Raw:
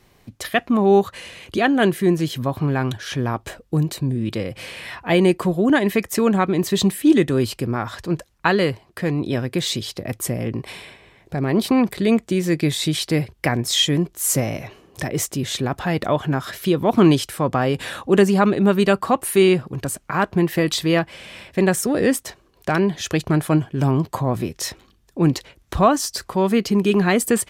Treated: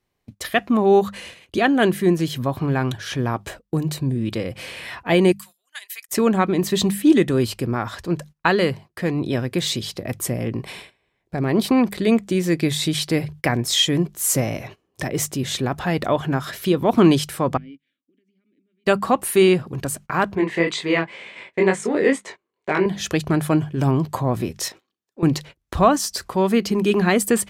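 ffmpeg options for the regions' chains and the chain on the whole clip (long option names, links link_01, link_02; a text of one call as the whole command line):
ffmpeg -i in.wav -filter_complex "[0:a]asettb=1/sr,asplit=3[link_01][link_02][link_03];[link_01]atrim=end=5.324[link_04];[link_02]atrim=start=5.32:end=6.09,asetpts=PTS-STARTPTS,afade=type=in:duration=0.004:curve=qsin,afade=type=out:start_time=0.766:duration=0.004:curve=qsin,highpass=1400,aderivative[link_05];[link_03]atrim=start=6.086[link_06];[link_04][link_05]acrossfade=duration=0.004:curve1=hsin:curve2=qsin[link_07];[link_07][link_06]acrossfade=duration=0.004:curve1=qsin:curve2=hsin,asettb=1/sr,asplit=3[link_08][link_09][link_10];[link_08]atrim=end=17.574[link_11];[link_09]atrim=start=17.57:end=18.86,asetpts=PTS-STARTPTS,afade=type=in:duration=0.004:curve=qsin,afade=type=out:start_time=1.286:duration=0.004:curve=qsin,agate=range=-33dB:threshold=-23dB:ratio=3:release=100:detection=peak,acompressor=threshold=-28dB:ratio=10:attack=3.2:release=140:knee=1:detection=peak,asplit=3[link_12][link_13][link_14];[link_12]bandpass=frequency=270:width_type=q:width=8,volume=0dB[link_15];[link_13]bandpass=frequency=2290:width_type=q:width=8,volume=-6dB[link_16];[link_14]bandpass=frequency=3010:width_type=q:width=8,volume=-9dB[link_17];[link_15][link_16][link_17]amix=inputs=3:normalize=0[link_18];[link_10]atrim=start=18.856[link_19];[link_11][link_18]acrossfade=duration=0.004:curve1=hsin:curve2=qsin[link_20];[link_20][link_19]acrossfade=duration=0.004:curve1=qsin:curve2=hsin,asettb=1/sr,asplit=3[link_21][link_22][link_23];[link_21]atrim=end=20.354[link_24];[link_22]atrim=start=20.35:end=22.86,asetpts=PTS-STARTPTS,afade=type=in:duration=0.004:curve=qsin,afade=type=out:start_time=2.506:duration=0.004:curve=qsin,flanger=delay=20:depth=4:speed=2.1,highpass=180,equalizer=frequency=420:width_type=q:width=4:gain=7,equalizer=frequency=970:width_type=q:width=4:gain=6,equalizer=frequency=2100:width_type=q:width=4:gain=10,equalizer=frequency=5400:width_type=q:width=4:gain=-8,lowpass=frequency=7700:width=0.5412,lowpass=frequency=7700:width=1.3066[link_25];[link_23]atrim=start=22.856[link_26];[link_24][link_25]acrossfade=duration=0.004:curve1=hsin:curve2=qsin[link_27];[link_27][link_26]acrossfade=duration=0.004:curve1=qsin:curve2=hsin,asettb=1/sr,asplit=3[link_28][link_29][link_30];[link_28]atrim=end=24.684[link_31];[link_29]atrim=start=24.68:end=25.23,asetpts=PTS-STARTPTS,afade=type=in:duration=0.004:curve=qsin,afade=type=out:start_time=0.546:duration=0.004:curve=qsin,highpass=270,acompressor=threshold=-37dB:ratio=2:attack=3.2:release=140:knee=1:detection=peak,equalizer=frequency=11000:width_type=o:width=0.28:gain=-6.5[link_32];[link_30]atrim=start=25.226[link_33];[link_31][link_32]acrossfade=duration=0.004:curve1=hsin:curve2=qsin[link_34];[link_34][link_33]acrossfade=duration=0.004:curve1=qsin:curve2=hsin,bandreject=frequency=50:width_type=h:width=6,bandreject=frequency=100:width_type=h:width=6,bandreject=frequency=150:width_type=h:width=6,bandreject=frequency=200:width_type=h:width=6,agate=range=-20dB:threshold=-38dB:ratio=16:detection=peak" out.wav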